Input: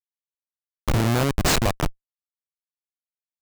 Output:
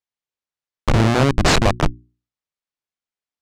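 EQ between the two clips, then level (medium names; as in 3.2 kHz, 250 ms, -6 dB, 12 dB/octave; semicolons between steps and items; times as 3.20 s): distance through air 72 m; hum notches 60/120/180/240/300/360 Hz; +6.5 dB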